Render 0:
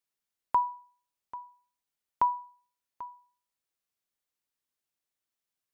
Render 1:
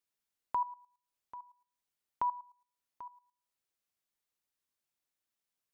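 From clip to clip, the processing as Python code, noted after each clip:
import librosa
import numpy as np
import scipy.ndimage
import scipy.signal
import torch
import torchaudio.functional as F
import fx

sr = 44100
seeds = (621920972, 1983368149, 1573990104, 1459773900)

y = fx.level_steps(x, sr, step_db=15)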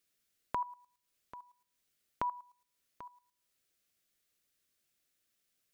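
y = fx.peak_eq(x, sr, hz=920.0, db=-14.5, octaves=0.48)
y = F.gain(torch.from_numpy(y), 9.0).numpy()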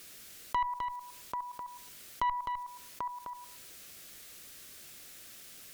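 y = fx.tube_stage(x, sr, drive_db=32.0, bias=0.5)
y = y + 10.0 ** (-12.0 / 20.0) * np.pad(y, (int(257 * sr / 1000.0), 0))[:len(y)]
y = fx.env_flatten(y, sr, amount_pct=50)
y = F.gain(torch.from_numpy(y), 8.0).numpy()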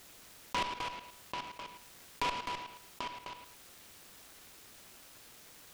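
y = fx.noise_mod_delay(x, sr, seeds[0], noise_hz=1600.0, depth_ms=0.12)
y = F.gain(torch.from_numpy(y), -3.0).numpy()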